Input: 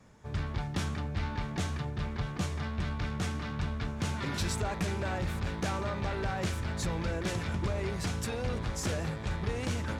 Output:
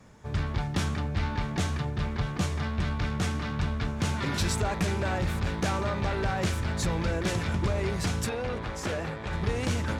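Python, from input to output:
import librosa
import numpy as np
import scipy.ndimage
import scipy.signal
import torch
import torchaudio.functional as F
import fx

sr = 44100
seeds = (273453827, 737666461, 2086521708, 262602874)

y = fx.bass_treble(x, sr, bass_db=-7, treble_db=-9, at=(8.29, 9.33))
y = F.gain(torch.from_numpy(y), 4.5).numpy()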